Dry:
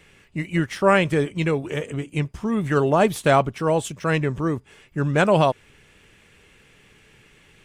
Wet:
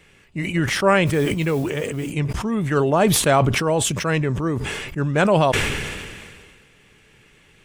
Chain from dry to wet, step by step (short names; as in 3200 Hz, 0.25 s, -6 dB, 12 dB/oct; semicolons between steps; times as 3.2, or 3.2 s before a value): 1.06–2.1 modulation noise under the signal 26 dB; sustainer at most 31 dB/s